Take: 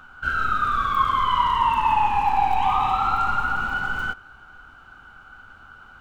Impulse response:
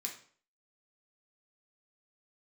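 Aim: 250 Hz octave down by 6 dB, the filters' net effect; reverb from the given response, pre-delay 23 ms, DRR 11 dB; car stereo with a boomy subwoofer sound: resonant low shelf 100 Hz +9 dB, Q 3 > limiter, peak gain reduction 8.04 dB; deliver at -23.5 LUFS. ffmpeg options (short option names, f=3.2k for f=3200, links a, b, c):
-filter_complex "[0:a]equalizer=f=250:t=o:g=-5,asplit=2[a][b];[1:a]atrim=start_sample=2205,adelay=23[c];[b][c]afir=irnorm=-1:irlink=0,volume=-10dB[d];[a][d]amix=inputs=2:normalize=0,lowshelf=f=100:t=q:w=3:g=9,volume=1.5dB,alimiter=limit=-13.5dB:level=0:latency=1"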